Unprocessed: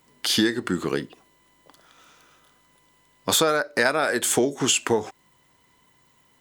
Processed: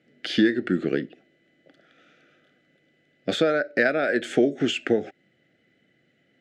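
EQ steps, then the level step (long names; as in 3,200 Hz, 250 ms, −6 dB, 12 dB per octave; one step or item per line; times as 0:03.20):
band-pass filter 170–2,000 Hz
Butterworth band-reject 1,000 Hz, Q 1.1
parametric band 440 Hz −4.5 dB 0.26 octaves
+3.5 dB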